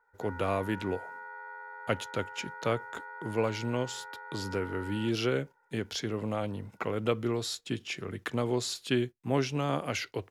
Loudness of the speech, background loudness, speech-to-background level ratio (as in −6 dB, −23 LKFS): −33.0 LKFS, −44.0 LKFS, 11.0 dB